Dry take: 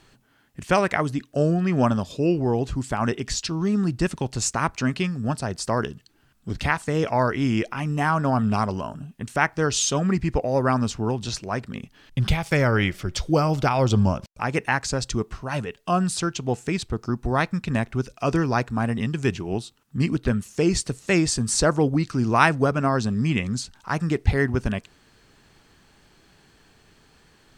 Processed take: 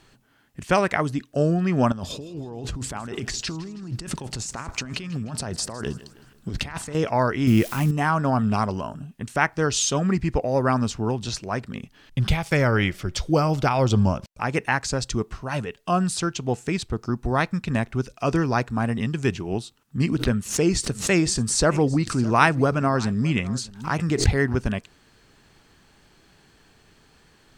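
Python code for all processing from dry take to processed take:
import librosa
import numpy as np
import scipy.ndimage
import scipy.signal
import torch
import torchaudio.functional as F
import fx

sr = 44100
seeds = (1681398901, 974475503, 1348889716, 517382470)

y = fx.chain(x, sr, fx.over_compress(threshold_db=-32.0, ratio=-1.0),
    fx.echo_feedback(ms=160, feedback_pct=46, wet_db=-18), at=(1.92, 6.95))
y = fx.chain(y, sr, fx.crossing_spikes(level_db=-25.0),
    fx.low_shelf(hz=350.0, db=8.0), at=(7.47, 7.91))
y = fx.chain(y, sr, fx.echo_single(ms=607, db=-21.5),
    fx.pre_swell(db_per_s=130.0), at=(20.08, 24.55))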